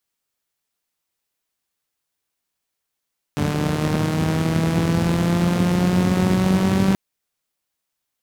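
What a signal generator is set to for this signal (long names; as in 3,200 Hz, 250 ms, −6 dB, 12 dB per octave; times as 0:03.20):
pulse-train model of a four-cylinder engine, changing speed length 3.58 s, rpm 4,400, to 5,800, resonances 110/180 Hz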